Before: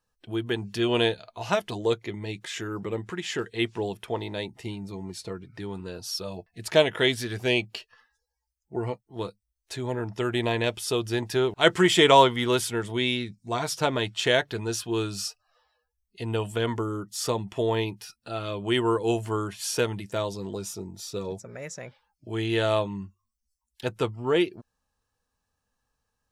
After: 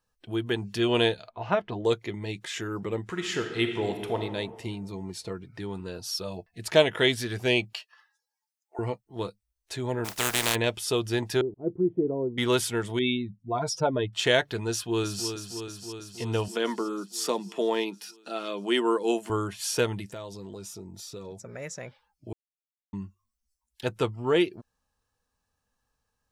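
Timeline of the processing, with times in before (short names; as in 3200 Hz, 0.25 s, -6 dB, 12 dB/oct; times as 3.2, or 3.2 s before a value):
1.29–1.85 LPF 2000 Hz
3.08–4.18 reverb throw, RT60 1.6 s, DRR 5 dB
7.73–8.79 HPF 680 Hz 24 dB/oct
10.04–10.54 spectral contrast lowered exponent 0.25
11.41–12.38 ladder low-pass 430 Hz, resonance 40%
12.99–14.13 spectral contrast raised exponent 1.9
14.71–15.28 echo throw 0.32 s, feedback 75%, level -8 dB
16.48–19.3 Chebyshev high-pass 180 Hz, order 5
20.07–21.4 compressor 2.5:1, threshold -40 dBFS
22.33–22.93 mute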